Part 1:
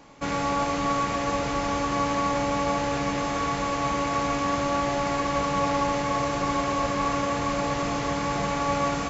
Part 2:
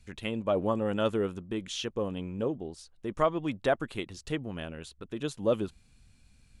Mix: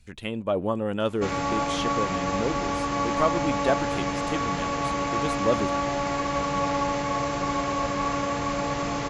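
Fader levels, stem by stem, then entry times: -1.0 dB, +2.0 dB; 1.00 s, 0.00 s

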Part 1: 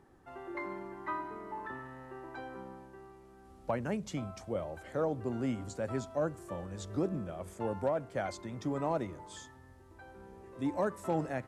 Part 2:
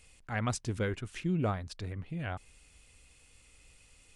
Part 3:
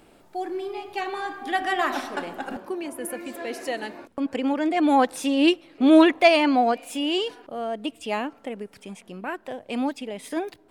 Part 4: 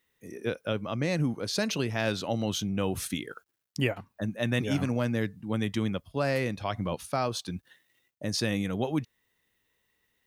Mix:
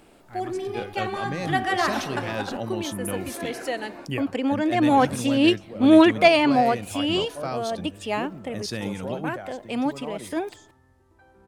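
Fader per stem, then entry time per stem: -3.5 dB, -9.5 dB, +0.5 dB, -2.5 dB; 1.20 s, 0.00 s, 0.00 s, 0.30 s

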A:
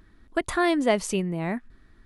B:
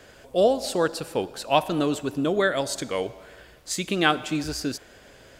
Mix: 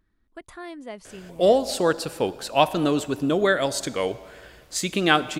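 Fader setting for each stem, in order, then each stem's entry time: -15.5 dB, +2.0 dB; 0.00 s, 1.05 s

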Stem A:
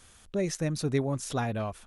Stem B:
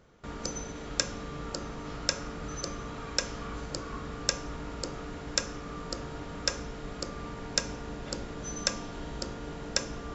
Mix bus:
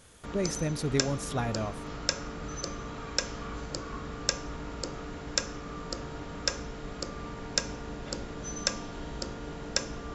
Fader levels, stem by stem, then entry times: -1.5 dB, 0.0 dB; 0.00 s, 0.00 s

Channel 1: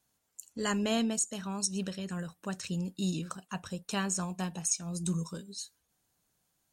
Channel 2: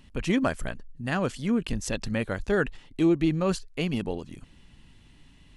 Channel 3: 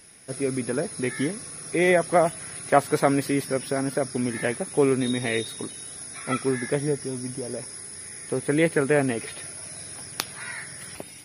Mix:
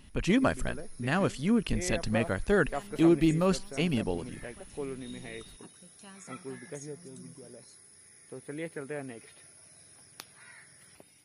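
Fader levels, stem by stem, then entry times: -19.0 dB, -0.5 dB, -17.0 dB; 2.10 s, 0.00 s, 0.00 s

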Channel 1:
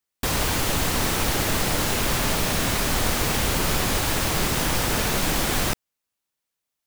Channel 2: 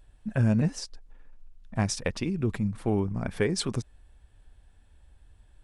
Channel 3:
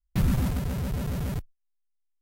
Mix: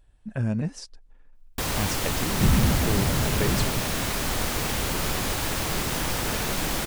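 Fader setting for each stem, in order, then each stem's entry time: -4.0 dB, -3.0 dB, +3.0 dB; 1.35 s, 0.00 s, 2.25 s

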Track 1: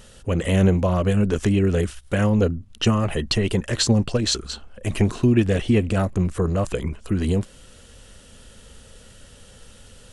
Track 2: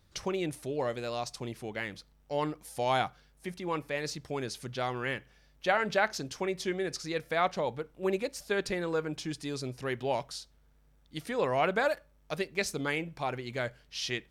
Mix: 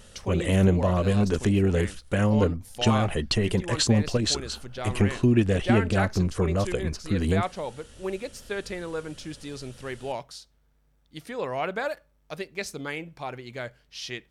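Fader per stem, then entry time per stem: -3.0 dB, -1.5 dB; 0.00 s, 0.00 s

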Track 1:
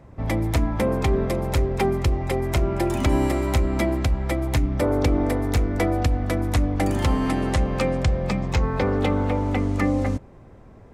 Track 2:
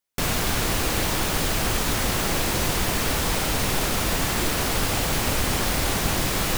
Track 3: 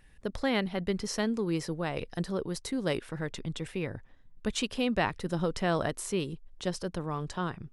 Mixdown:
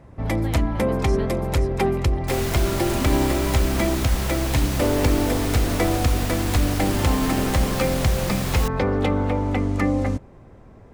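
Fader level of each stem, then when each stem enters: +0.5 dB, -6.0 dB, -8.0 dB; 0.00 s, 2.10 s, 0.00 s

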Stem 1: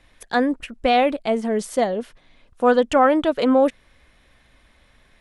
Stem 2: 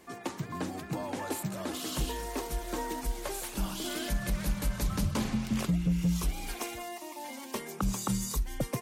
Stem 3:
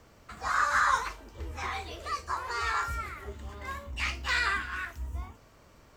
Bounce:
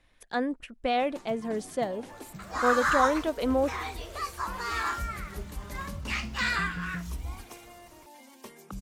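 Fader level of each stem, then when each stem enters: -9.5 dB, -10.0 dB, -0.5 dB; 0.00 s, 0.90 s, 2.10 s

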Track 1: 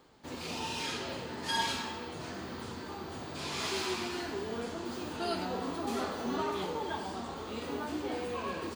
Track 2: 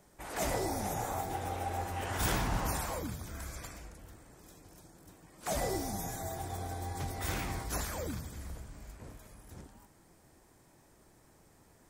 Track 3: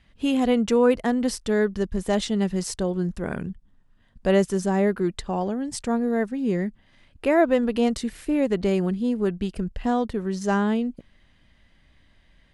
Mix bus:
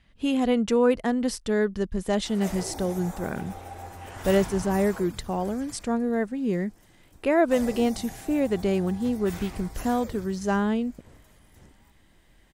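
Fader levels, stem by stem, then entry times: mute, -4.0 dB, -2.0 dB; mute, 2.05 s, 0.00 s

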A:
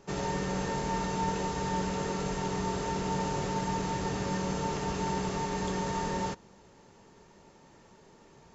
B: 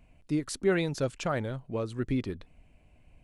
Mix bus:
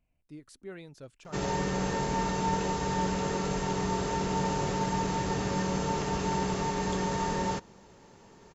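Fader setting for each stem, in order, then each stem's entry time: +2.0 dB, -17.5 dB; 1.25 s, 0.00 s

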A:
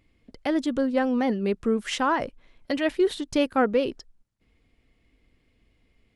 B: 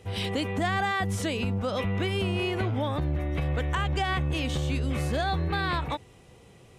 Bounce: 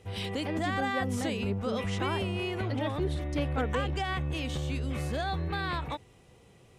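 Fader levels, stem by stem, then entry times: -11.0 dB, -4.5 dB; 0.00 s, 0.00 s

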